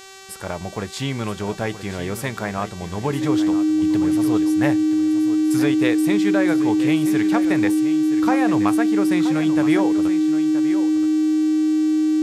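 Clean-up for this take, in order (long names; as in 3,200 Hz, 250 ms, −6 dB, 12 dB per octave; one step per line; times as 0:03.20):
hum removal 385.5 Hz, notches 21
notch filter 310 Hz, Q 30
downward expander −22 dBFS, range −21 dB
echo removal 975 ms −12 dB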